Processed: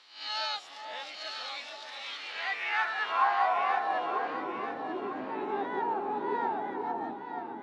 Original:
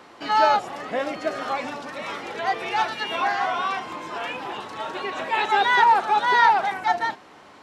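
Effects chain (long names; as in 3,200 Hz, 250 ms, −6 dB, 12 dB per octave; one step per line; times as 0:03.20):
peak hold with a rise ahead of every peak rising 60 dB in 0.46 s
band-pass filter sweep 4,000 Hz → 280 Hz, 0:02.00–0:04.59
delay that swaps between a low-pass and a high-pass 472 ms, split 950 Hz, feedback 63%, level −3 dB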